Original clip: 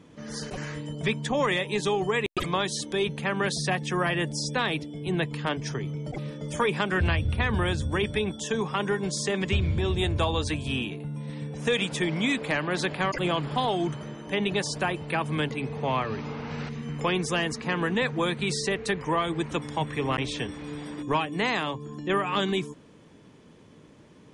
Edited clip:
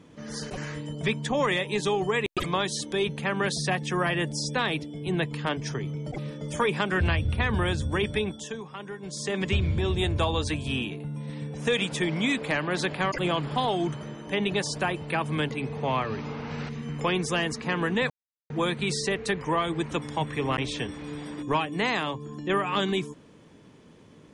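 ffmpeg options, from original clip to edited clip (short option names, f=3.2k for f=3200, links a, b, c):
-filter_complex "[0:a]asplit=4[a][b][c][d];[a]atrim=end=8.62,asetpts=PTS-STARTPTS,afade=t=out:st=8.19:d=0.43:silence=0.266073[e];[b]atrim=start=8.62:end=9,asetpts=PTS-STARTPTS,volume=-11.5dB[f];[c]atrim=start=9:end=18.1,asetpts=PTS-STARTPTS,afade=t=in:d=0.43:silence=0.266073,afade=t=out:st=9.096:d=0.004:c=hsin,apad=pad_dur=0.4[g];[d]atrim=start=18.1,asetpts=PTS-STARTPTS,afade=t=in:d=0.004:c=hsin[h];[e][f][g][h]concat=n=4:v=0:a=1"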